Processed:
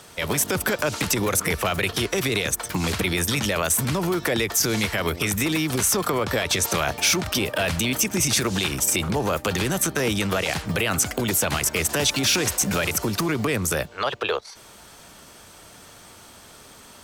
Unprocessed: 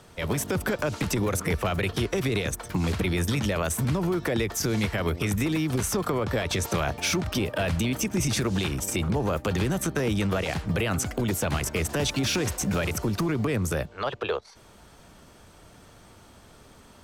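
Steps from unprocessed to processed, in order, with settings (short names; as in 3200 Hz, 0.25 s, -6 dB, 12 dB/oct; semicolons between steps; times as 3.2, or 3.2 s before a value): tilt +2 dB/oct; in parallel at -1 dB: limiter -19.5 dBFS, peak gain reduction 8 dB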